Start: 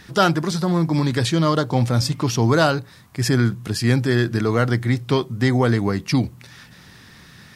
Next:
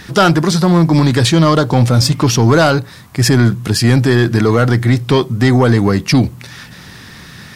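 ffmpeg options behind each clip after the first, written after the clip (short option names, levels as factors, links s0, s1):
-filter_complex "[0:a]asplit=2[s0][s1];[s1]alimiter=limit=0.282:level=0:latency=1,volume=0.891[s2];[s0][s2]amix=inputs=2:normalize=0,acontrast=49,volume=0.891"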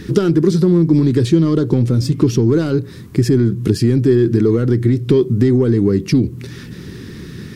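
-af "acompressor=threshold=0.141:ratio=10,lowshelf=f=520:t=q:w=3:g=10,volume=0.562"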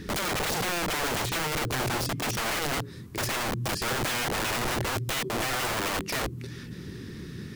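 -af "aeval=exprs='(mod(6.31*val(0)+1,2)-1)/6.31':c=same,volume=0.398"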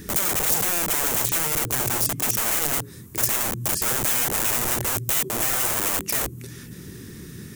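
-af "aexciter=amount=4.1:drive=5.9:freq=6300"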